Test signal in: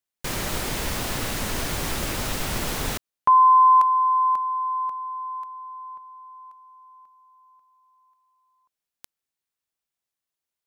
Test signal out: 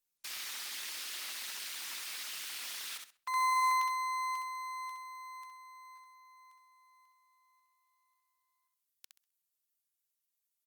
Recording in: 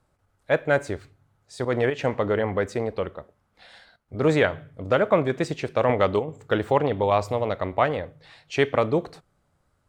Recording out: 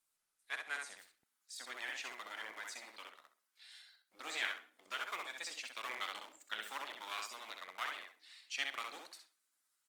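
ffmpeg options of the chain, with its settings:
-filter_complex "[0:a]equalizer=f=440:t=o:w=1.4:g=-8.5,asplit=2[a][b];[b]adelay=65,lowpass=f=4.5k:p=1,volume=-3dB,asplit=2[c][d];[d]adelay=65,lowpass=f=4.5k:p=1,volume=0.27,asplit=2[e][f];[f]adelay=65,lowpass=f=4.5k:p=1,volume=0.27,asplit=2[g][h];[h]adelay=65,lowpass=f=4.5k:p=1,volume=0.27[i];[c][e][g][i]amix=inputs=4:normalize=0[j];[a][j]amix=inputs=2:normalize=0,acrossover=split=5800[k][l];[l]acompressor=threshold=-50dB:ratio=4:attack=1:release=60[m];[k][m]amix=inputs=2:normalize=0,acrossover=split=830[n][o];[n]aeval=exprs='abs(val(0))':c=same[p];[p][o]amix=inputs=2:normalize=0,highpass=f=220:w=0.5412,highpass=f=220:w=1.3066,aderivative" -ar 48000 -c:a libopus -b:a 24k

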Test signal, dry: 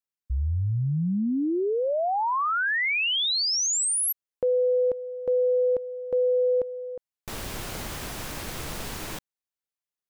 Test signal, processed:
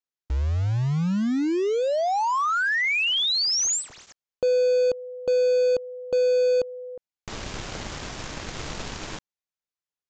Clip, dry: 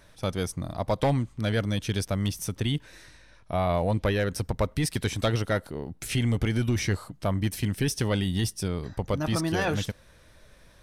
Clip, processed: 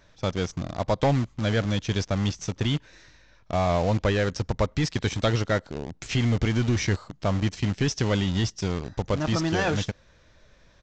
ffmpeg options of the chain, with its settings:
-filter_complex "[0:a]asplit=2[a][b];[b]acrusher=bits=4:mix=0:aa=0.000001,volume=-5dB[c];[a][c]amix=inputs=2:normalize=0,aresample=16000,aresample=44100,volume=-2dB"

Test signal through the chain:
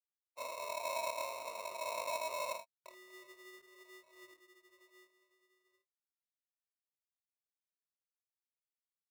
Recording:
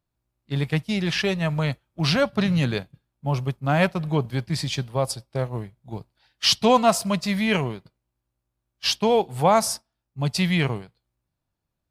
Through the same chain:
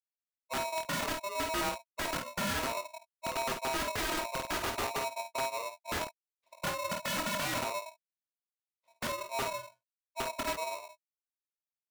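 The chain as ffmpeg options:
-af "afftfilt=real='re*gte(hypot(re,im),0.0316)':imag='im*gte(hypot(re,im),0.0316)':win_size=1024:overlap=0.75,acompressor=threshold=-24dB:ratio=5,alimiter=limit=-22dB:level=0:latency=1:release=363,dynaudnorm=f=630:g=9:m=4.5dB,aphaser=in_gain=1:out_gain=1:delay=3.5:decay=0.33:speed=1:type=sinusoidal,asuperpass=centerf=180:order=4:qfactor=1.6,flanger=delay=17.5:depth=7.5:speed=0.49,aeval=exprs='(mod(39.8*val(0)+1,2)-1)/39.8':c=same,aecho=1:1:24|52|68:0.447|0.398|0.133,aeval=exprs='(tanh(44.7*val(0)+0.05)-tanh(0.05))/44.7':c=same,aeval=exprs='val(0)*sgn(sin(2*PI*800*n/s))':c=same,volume=5dB"

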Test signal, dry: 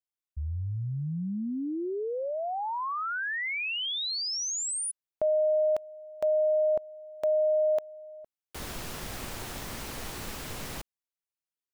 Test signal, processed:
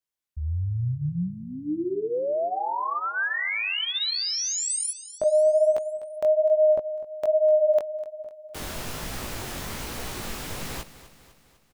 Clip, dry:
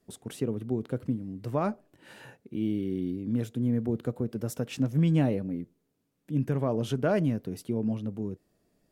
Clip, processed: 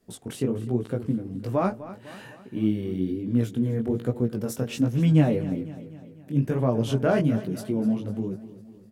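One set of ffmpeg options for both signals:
-af "flanger=delay=16:depth=7:speed=1.2,aecho=1:1:251|502|753|1004|1255:0.168|0.0907|0.049|0.0264|0.0143,volume=7dB"

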